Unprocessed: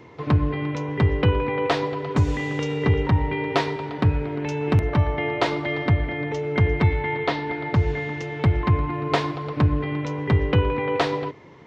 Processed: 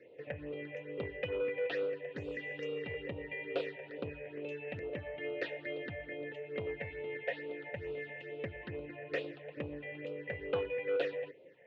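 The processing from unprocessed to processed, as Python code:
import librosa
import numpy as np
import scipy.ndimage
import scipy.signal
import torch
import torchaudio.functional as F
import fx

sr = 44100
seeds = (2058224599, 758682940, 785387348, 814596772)

y = fx.vowel_filter(x, sr, vowel='e')
y = fx.dynamic_eq(y, sr, hz=710.0, q=1.1, threshold_db=-44.0, ratio=4.0, max_db=-4)
y = fx.phaser_stages(y, sr, stages=6, low_hz=310.0, high_hz=1800.0, hz=2.3, feedback_pct=5)
y = fx.transformer_sat(y, sr, knee_hz=770.0)
y = y * 10.0 ** (2.5 / 20.0)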